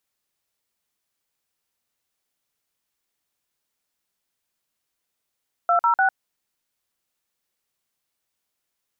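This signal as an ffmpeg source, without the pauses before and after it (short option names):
-f lavfi -i "aevalsrc='0.126*clip(min(mod(t,0.149),0.101-mod(t,0.149))/0.002,0,1)*(eq(floor(t/0.149),0)*(sin(2*PI*697*mod(t,0.149))+sin(2*PI*1336*mod(t,0.149)))+eq(floor(t/0.149),1)*(sin(2*PI*941*mod(t,0.149))+sin(2*PI*1336*mod(t,0.149)))+eq(floor(t/0.149),2)*(sin(2*PI*770*mod(t,0.149))+sin(2*PI*1477*mod(t,0.149))))':d=0.447:s=44100"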